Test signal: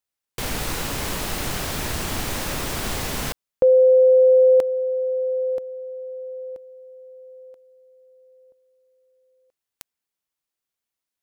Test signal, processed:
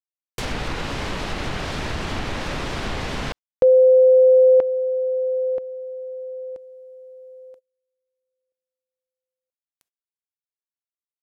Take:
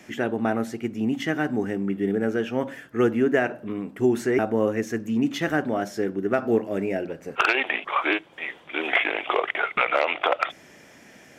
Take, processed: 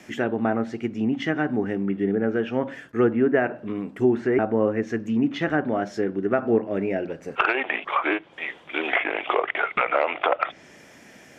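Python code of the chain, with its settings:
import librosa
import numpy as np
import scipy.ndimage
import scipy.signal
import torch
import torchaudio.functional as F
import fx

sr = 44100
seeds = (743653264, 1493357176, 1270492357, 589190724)

y = fx.gate_hold(x, sr, open_db=-48.0, close_db=-50.0, hold_ms=23.0, range_db=-29, attack_ms=0.14, release_ms=26.0)
y = fx.env_lowpass_down(y, sr, base_hz=2000.0, full_db=-19.5)
y = y * librosa.db_to_amplitude(1.0)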